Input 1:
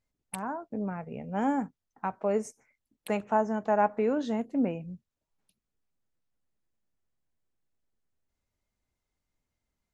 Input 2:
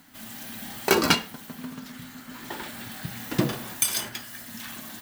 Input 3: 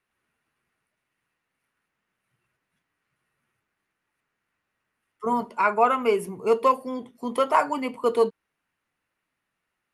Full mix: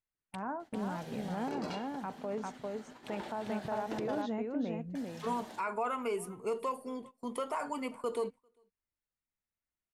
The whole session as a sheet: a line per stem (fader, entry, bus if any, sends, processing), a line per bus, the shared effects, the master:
−3.0 dB, 0.00 s, bus A, no send, echo send −5.5 dB, low-pass filter 5,000 Hz 12 dB per octave; downward compressor, threshold −27 dBFS, peak gain reduction 8.5 dB
−10.5 dB, 0.60 s, muted 0:04.22–0:04.95, bus A, no send, no echo send, flat-topped bell 550 Hz +10 dB; downward compressor, threshold −22 dBFS, peak gain reduction 14 dB; low-pass filter 6,800 Hz 12 dB per octave
−9.0 dB, 0.00 s, no bus, no send, echo send −21.5 dB, parametric band 8,400 Hz +9 dB 0.62 octaves; brickwall limiter −16.5 dBFS, peak gain reduction 10.5 dB
bus A: 0.0 dB, brickwall limiter −28 dBFS, peak gain reduction 9.5 dB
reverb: not used
echo: single-tap delay 398 ms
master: noise gate −48 dBFS, range −14 dB

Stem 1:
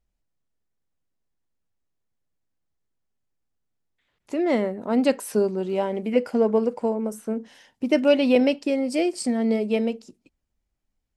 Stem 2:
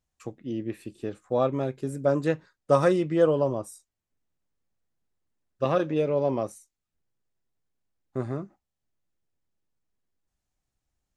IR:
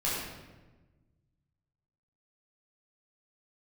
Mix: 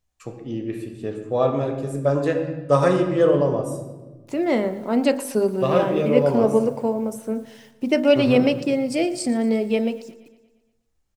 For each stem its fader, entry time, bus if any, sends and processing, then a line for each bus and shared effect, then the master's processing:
+2.0 dB, 0.00 s, no send, echo send −18 dB, bit reduction 10 bits
+1.5 dB, 0.00 s, send −10.5 dB, no echo send, no processing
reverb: on, RT60 1.2 s, pre-delay 9 ms
echo: repeating echo 117 ms, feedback 56%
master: hum removal 51.2 Hz, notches 35

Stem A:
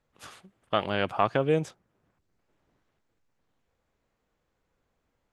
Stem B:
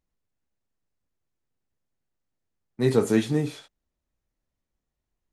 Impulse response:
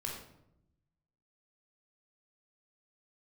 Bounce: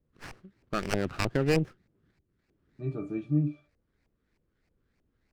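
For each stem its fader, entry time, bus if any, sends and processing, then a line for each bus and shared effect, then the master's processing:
+1.5 dB, 0.00 s, no send, drawn EQ curve 380 Hz 0 dB, 840 Hz −23 dB, 1,600 Hz −2 dB, 3,600 Hz +13 dB; auto-filter low-pass saw up 3.2 Hz 680–2,500 Hz; windowed peak hold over 9 samples
−0.5 dB, 0.00 s, no send, resonances in every octave D, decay 0.13 s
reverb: not used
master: low-shelf EQ 230 Hz +3.5 dB

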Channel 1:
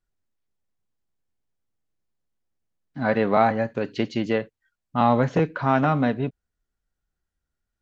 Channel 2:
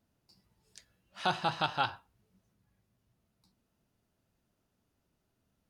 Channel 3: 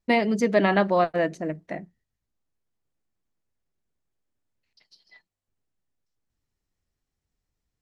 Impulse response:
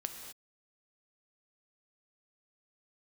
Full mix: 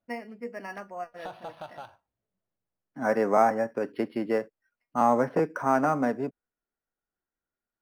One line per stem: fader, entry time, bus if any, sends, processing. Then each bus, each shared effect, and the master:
−1.5 dB, 0.00 s, no send, three-way crossover with the lows and the highs turned down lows −18 dB, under 220 Hz, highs −22 dB, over 2,400 Hz
−9.5 dB, 0.00 s, no send, parametric band 610 Hz +13 dB 0.5 octaves; downward compressor 2.5 to 1, threshold −33 dBFS, peak gain reduction 9 dB; leveller curve on the samples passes 1; automatic ducking −14 dB, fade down 1.30 s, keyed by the first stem
−4.5 dB, 0.00 s, no send, Butterworth low-pass 2,900 Hz 96 dB per octave; low-shelf EQ 500 Hz −10.5 dB; tuned comb filter 240 Hz, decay 0.16 s, harmonics all, mix 80%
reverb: not used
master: linearly interpolated sample-rate reduction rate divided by 6×

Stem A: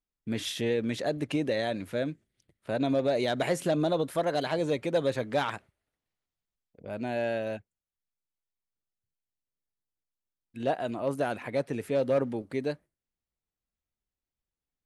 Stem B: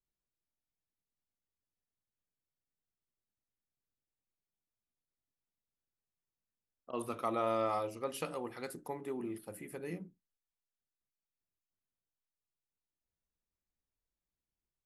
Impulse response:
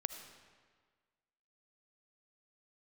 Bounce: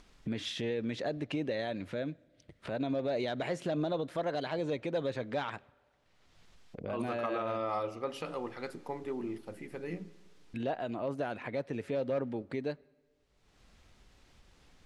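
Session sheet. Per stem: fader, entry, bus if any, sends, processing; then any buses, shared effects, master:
−5.0 dB, 0.00 s, send −19.5 dB, upward compression, threshold −27 dBFS
−0.5 dB, 0.00 s, send −7.5 dB, no processing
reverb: on, RT60 1.6 s, pre-delay 35 ms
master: low-pass filter 5,200 Hz 12 dB per octave; brickwall limiter −24.5 dBFS, peak gain reduction 8 dB

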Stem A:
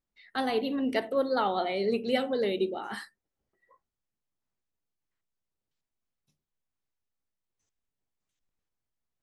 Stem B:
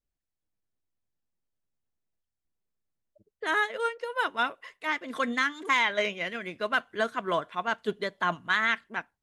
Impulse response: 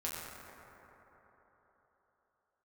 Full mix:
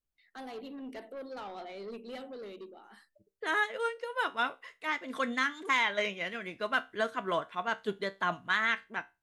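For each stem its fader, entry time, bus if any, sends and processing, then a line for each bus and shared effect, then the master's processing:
−11.5 dB, 0.00 s, no send, high-pass filter 160 Hz 24 dB per octave; noise gate with hold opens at −53 dBFS; soft clipping −25.5 dBFS, distortion −13 dB; automatic ducking −11 dB, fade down 1.15 s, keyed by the second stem
0.0 dB, 0.00 s, no send, tuned comb filter 65 Hz, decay 0.25 s, harmonics all, mix 50%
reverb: not used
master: no processing

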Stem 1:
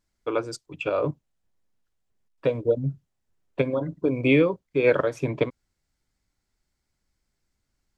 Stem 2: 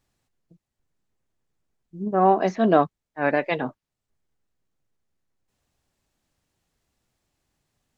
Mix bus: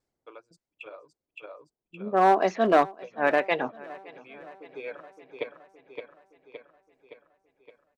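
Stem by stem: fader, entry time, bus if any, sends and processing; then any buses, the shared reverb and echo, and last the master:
−3.5 dB, 0.00 s, no send, echo send −6 dB, reverb reduction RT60 1.8 s; low-shelf EQ 350 Hz −8.5 dB; tremolo with a ramp in dB decaying 1.3 Hz, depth 31 dB; automatic ducking −23 dB, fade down 1.45 s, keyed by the second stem
+0.5 dB, 0.00 s, no send, echo send −21.5 dB, low-pass that shuts in the quiet parts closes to 570 Hz, open at −16.5 dBFS; asymmetric clip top −13.5 dBFS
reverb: not used
echo: repeating echo 567 ms, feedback 58%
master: bass and treble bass −13 dB, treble −1 dB

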